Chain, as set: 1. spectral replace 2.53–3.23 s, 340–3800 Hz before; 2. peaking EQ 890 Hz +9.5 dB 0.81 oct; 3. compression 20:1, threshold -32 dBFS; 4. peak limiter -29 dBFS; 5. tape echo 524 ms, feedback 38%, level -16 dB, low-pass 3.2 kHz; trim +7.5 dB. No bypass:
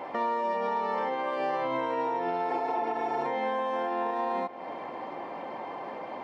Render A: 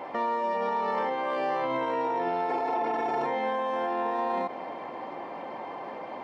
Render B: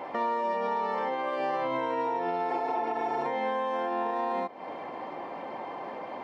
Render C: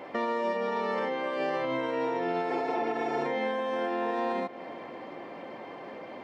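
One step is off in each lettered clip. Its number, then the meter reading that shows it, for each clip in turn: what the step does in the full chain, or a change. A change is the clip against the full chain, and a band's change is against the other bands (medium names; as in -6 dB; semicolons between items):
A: 3, mean gain reduction 10.5 dB; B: 5, echo-to-direct -39.5 dB to none; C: 2, 1 kHz band -7.0 dB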